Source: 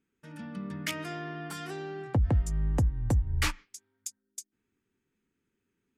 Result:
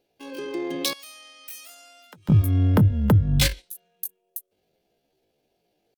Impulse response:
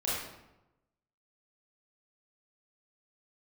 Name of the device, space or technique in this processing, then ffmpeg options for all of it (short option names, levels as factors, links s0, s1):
chipmunk voice: -filter_complex "[0:a]asettb=1/sr,asplit=3[s0][s1][s2];[s0]atrim=end=0.944[s3];[s1]atrim=start=0.94:end=2.33,asetpts=PTS-STARTPTS,afade=t=in:d=0.004:c=qsin,afade=t=out:st=1.386:d=0.004:c=qsin,aderivative[s4];[s2]atrim=start=2.326[s5];[s3][s4]acrossfade=d=0.004:c1=hsin:c2=qsin[s6];[s6][s5]acrossfade=d=0.004:c1=qsin:c2=hsin,asetrate=78577,aresample=44100,atempo=0.561231,volume=2.66"